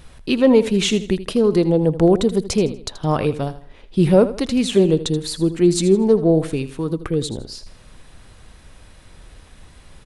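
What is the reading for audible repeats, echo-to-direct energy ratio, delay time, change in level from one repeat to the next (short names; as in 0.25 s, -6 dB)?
3, -13.5 dB, 80 ms, -9.0 dB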